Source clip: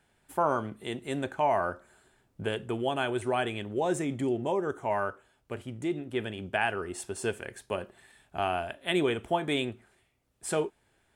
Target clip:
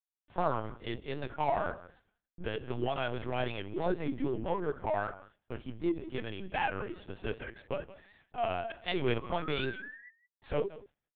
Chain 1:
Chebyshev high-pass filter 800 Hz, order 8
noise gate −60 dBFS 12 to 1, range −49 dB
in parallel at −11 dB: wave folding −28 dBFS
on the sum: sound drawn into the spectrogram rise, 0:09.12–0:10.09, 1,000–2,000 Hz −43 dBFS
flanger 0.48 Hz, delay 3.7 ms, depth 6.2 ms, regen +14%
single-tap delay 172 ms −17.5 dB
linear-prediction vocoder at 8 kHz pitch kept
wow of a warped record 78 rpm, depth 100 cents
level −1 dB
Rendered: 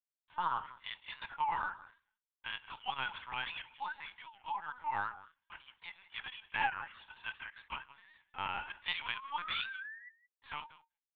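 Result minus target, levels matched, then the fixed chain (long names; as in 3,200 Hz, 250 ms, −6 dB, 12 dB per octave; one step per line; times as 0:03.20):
1,000 Hz band +3.0 dB
noise gate −60 dBFS 12 to 1, range −49 dB
in parallel at −11 dB: wave folding −28 dBFS
on the sum: sound drawn into the spectrogram rise, 0:09.12–0:10.09, 1,000–2,000 Hz −43 dBFS
flanger 0.48 Hz, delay 3.7 ms, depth 6.2 ms, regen +14%
single-tap delay 172 ms −17.5 dB
linear-prediction vocoder at 8 kHz pitch kept
wow of a warped record 78 rpm, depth 100 cents
level −1 dB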